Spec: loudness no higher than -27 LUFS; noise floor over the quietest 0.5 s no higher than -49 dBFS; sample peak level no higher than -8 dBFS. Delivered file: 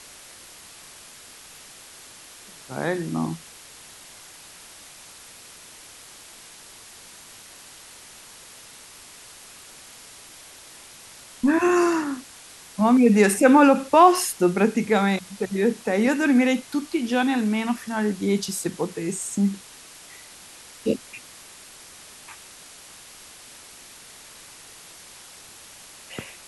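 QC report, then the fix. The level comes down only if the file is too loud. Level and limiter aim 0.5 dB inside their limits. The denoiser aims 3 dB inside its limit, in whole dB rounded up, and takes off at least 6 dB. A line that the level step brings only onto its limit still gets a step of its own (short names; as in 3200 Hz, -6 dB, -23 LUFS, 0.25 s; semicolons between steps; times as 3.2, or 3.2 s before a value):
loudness -21.5 LUFS: fail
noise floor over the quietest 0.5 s -46 dBFS: fail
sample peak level -4.0 dBFS: fail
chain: gain -6 dB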